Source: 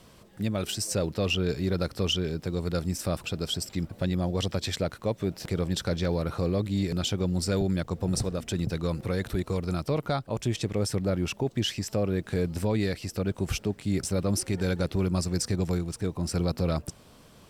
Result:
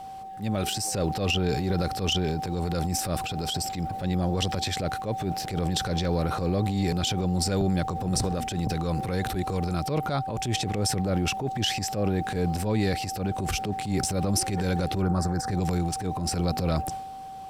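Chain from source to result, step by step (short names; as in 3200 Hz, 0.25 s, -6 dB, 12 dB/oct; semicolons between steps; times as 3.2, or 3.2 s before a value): whine 770 Hz -39 dBFS; transient shaper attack -9 dB, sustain +7 dB; 15.02–15.51 resonant high shelf 2000 Hz -8.5 dB, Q 3; gain +2 dB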